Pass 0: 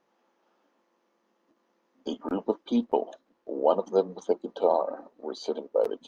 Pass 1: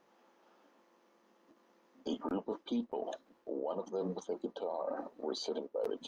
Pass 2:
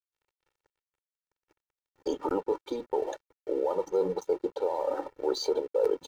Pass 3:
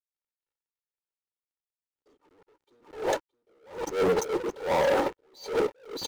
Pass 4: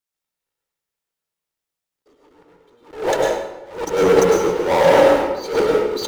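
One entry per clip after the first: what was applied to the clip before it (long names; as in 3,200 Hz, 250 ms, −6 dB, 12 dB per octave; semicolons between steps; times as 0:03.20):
reversed playback; downward compressor 6 to 1, threshold −30 dBFS, peak gain reduction 13.5 dB; reversed playback; brickwall limiter −31 dBFS, peak gain reduction 11.5 dB; level +3.5 dB
parametric band 3,200 Hz −11.5 dB 0.37 octaves; dead-zone distortion −59.5 dBFS; comb filter 2.2 ms, depth 92%; level +6 dB
leveller curve on the samples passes 5; single-tap delay 619 ms −13.5 dB; level that may rise only so fast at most 140 dB per second; level −3 dB
convolution reverb RT60 1.0 s, pre-delay 94 ms, DRR −1 dB; level +7.5 dB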